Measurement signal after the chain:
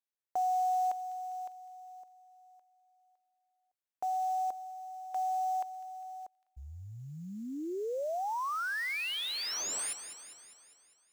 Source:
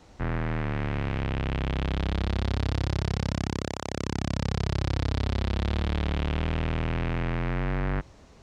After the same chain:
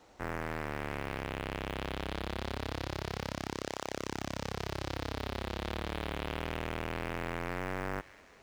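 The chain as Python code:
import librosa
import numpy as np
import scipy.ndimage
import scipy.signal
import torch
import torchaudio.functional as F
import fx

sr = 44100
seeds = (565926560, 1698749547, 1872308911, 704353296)

p1 = fx.echo_wet_highpass(x, sr, ms=201, feedback_pct=57, hz=2400.0, wet_db=-11)
p2 = fx.sample_hold(p1, sr, seeds[0], rate_hz=7000.0, jitter_pct=20)
p3 = p1 + F.gain(torch.from_numpy(p2), -9.5).numpy()
p4 = fx.bass_treble(p3, sr, bass_db=-12, treble_db=0)
y = F.gain(torch.from_numpy(p4), -5.0).numpy()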